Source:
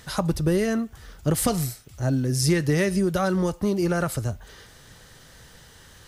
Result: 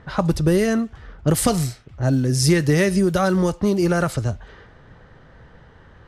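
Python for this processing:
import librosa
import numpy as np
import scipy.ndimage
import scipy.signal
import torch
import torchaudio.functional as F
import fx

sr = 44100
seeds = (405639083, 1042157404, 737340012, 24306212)

y = fx.env_lowpass(x, sr, base_hz=1300.0, full_db=-18.5)
y = y * librosa.db_to_amplitude(4.5)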